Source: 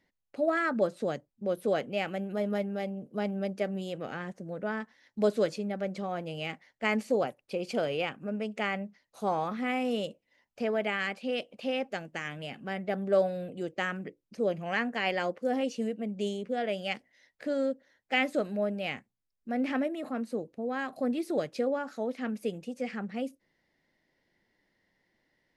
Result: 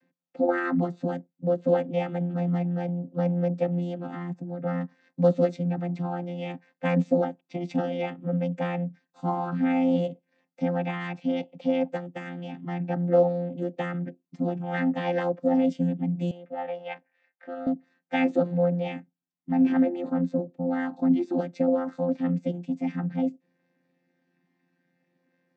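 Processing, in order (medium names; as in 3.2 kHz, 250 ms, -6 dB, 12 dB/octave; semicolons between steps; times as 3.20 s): vocoder on a held chord bare fifth, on F3; 16.31–17.67 s: three-band isolator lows -20 dB, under 570 Hz, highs -20 dB, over 3 kHz; trim +6.5 dB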